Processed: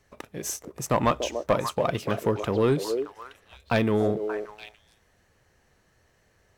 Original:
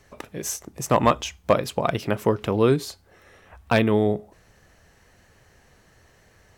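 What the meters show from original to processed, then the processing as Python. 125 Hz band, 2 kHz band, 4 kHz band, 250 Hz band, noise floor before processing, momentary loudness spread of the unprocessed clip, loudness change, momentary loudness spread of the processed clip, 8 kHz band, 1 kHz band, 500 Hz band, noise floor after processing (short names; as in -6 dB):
-3.5 dB, -3.5 dB, -3.0 dB, -3.5 dB, -58 dBFS, 11 LU, -3.5 dB, 16 LU, -2.5 dB, -3.5 dB, -2.5 dB, -66 dBFS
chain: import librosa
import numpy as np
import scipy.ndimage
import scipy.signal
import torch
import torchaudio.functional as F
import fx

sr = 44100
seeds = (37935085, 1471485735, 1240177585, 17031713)

y = fx.echo_stepped(x, sr, ms=290, hz=460.0, octaves=1.4, feedback_pct=70, wet_db=-5)
y = fx.leveller(y, sr, passes=1)
y = y * librosa.db_to_amplitude(-6.5)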